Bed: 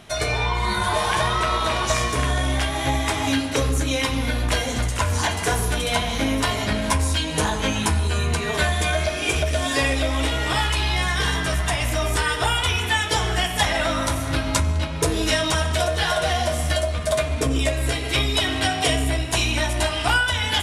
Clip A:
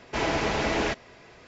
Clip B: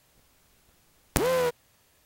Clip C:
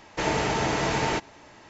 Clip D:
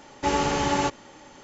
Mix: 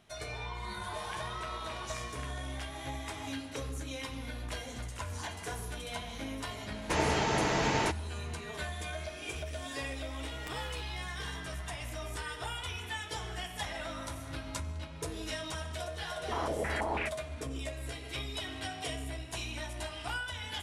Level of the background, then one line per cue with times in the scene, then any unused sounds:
bed −17.5 dB
0:06.72: mix in C −4 dB
0:09.31: mix in B −11 dB + downward compressor, threshold −34 dBFS
0:16.15: mix in A −12 dB + low-pass on a step sequencer 6.1 Hz 440–2,400 Hz
not used: D

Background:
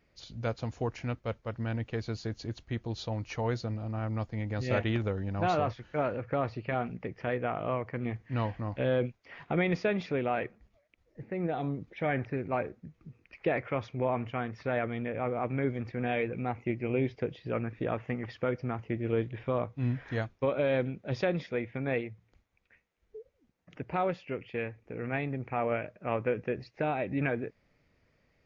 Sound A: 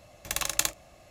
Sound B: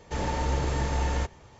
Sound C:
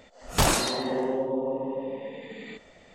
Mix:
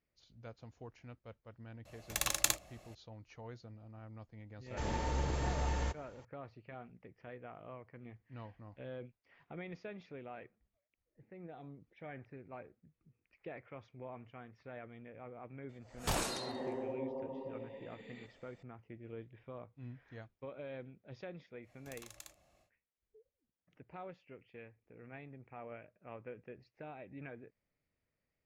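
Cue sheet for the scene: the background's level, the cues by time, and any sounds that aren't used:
background −18 dB
0:01.85: mix in A −4.5 dB
0:04.66: mix in B −8 dB
0:15.69: mix in C −13 dB
0:21.61: mix in A −16 dB, fades 0.10 s + downward compressor 2.5 to 1, threshold −36 dBFS

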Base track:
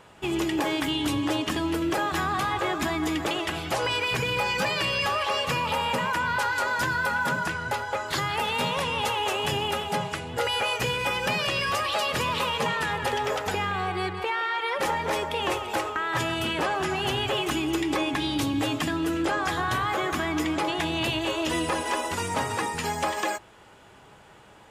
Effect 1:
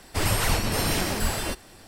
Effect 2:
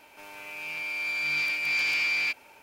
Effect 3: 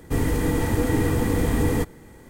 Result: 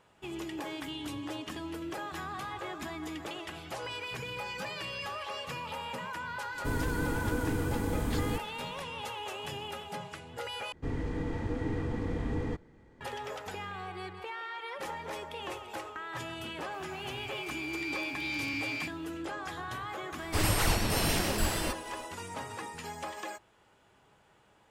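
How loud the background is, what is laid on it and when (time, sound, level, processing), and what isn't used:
base track −12.5 dB
0:06.54: mix in 3 −10 dB + notch filter 1,900 Hz, Q 13
0:10.72: overwrite with 3 −11.5 dB + high-frequency loss of the air 150 metres
0:16.55: mix in 2 −10 dB
0:20.18: mix in 1 −4 dB

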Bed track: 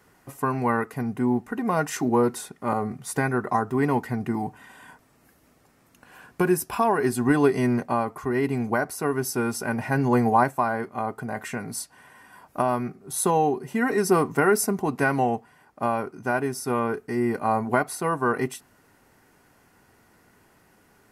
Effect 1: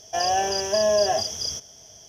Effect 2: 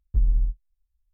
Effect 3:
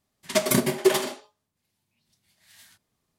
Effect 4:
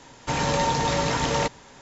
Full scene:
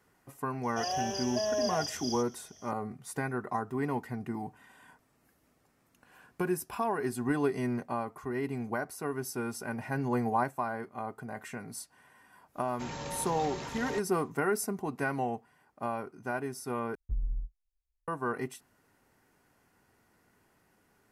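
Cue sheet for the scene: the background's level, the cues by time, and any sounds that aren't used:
bed track −9.5 dB
0:00.63: mix in 1 −10.5 dB
0:12.52: mix in 4 −16 dB, fades 0.10 s
0:16.95: overwrite with 2 −12 dB
not used: 3

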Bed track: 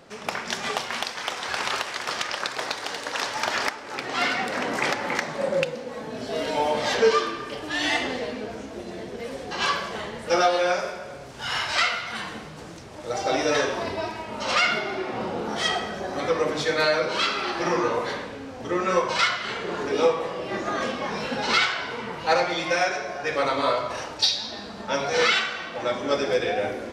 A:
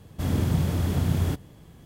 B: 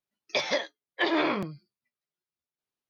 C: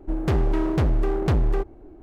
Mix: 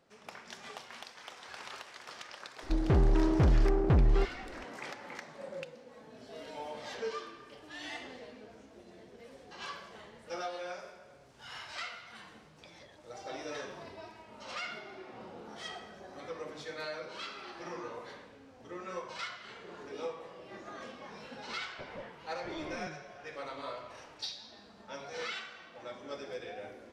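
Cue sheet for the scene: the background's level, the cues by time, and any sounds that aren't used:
bed track −18.5 dB
0:02.62: mix in C −3.5 dB + high-frequency loss of the air 350 metres
0:12.29: mix in B −14 dB + downward compressor, threshold −39 dBFS
0:21.44: mix in B −11 dB + linear delta modulator 16 kbit/s, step −42.5 dBFS
not used: A

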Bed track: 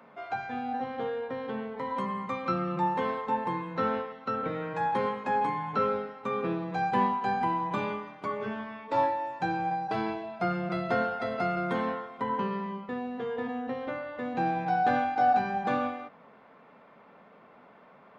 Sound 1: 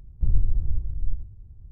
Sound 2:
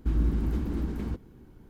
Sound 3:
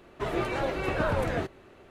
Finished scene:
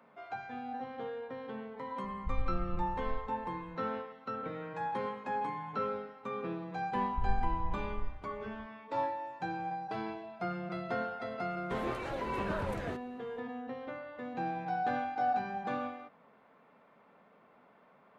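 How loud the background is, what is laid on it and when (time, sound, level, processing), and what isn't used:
bed track −7.5 dB
0:02.04: mix in 1 −14 dB
0:06.95: mix in 1 −12.5 dB
0:11.50: mix in 3 −9 dB
not used: 2

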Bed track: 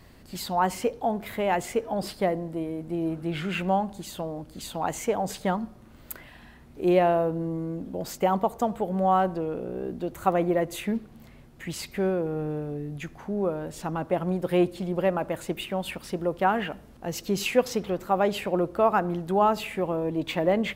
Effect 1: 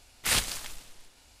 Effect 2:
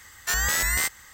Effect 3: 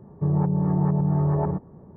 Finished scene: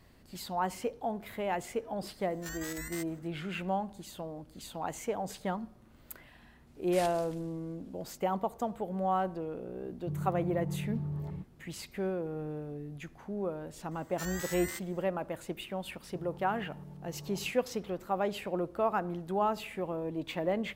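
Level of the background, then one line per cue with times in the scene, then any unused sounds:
bed track −8 dB
0:02.15: mix in 2 −17.5 dB + square-wave tremolo 6.5 Hz, depth 60%, duty 75%
0:06.67: mix in 1 −17.5 dB + one scale factor per block 7 bits
0:09.85: mix in 3 −11.5 dB + parametric band 740 Hz −13.5 dB 2.5 octaves
0:13.91: mix in 2 −16.5 dB
0:15.93: mix in 3 −16.5 dB + downward compressor 3 to 1, threshold −31 dBFS

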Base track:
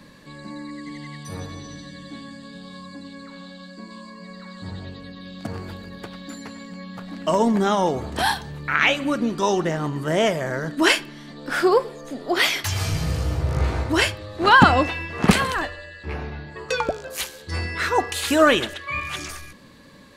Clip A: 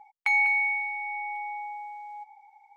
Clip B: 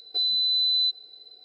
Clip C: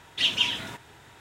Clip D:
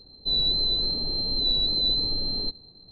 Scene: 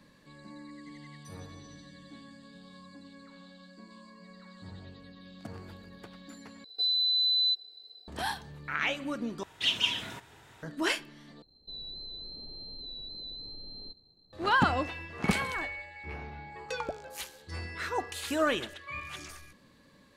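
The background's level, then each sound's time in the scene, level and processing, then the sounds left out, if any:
base track −12 dB
0:06.64: overwrite with B −8.5 dB + high-shelf EQ 3,800 Hz +10 dB
0:09.43: overwrite with C −4 dB
0:11.42: overwrite with D −13 dB + downward compressor 2.5 to 1, threshold −29 dBFS
0:14.98: mix in A −13.5 dB + delay that plays each chunk backwards 140 ms, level −11 dB

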